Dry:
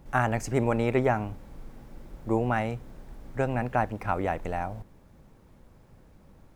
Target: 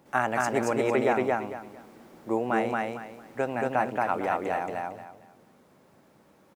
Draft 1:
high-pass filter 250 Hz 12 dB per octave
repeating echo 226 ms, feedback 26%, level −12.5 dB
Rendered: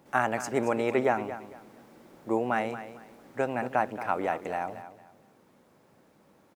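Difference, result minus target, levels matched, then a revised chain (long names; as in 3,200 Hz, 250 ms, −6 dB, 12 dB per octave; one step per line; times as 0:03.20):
echo-to-direct −11 dB
high-pass filter 250 Hz 12 dB per octave
repeating echo 226 ms, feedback 26%, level −1.5 dB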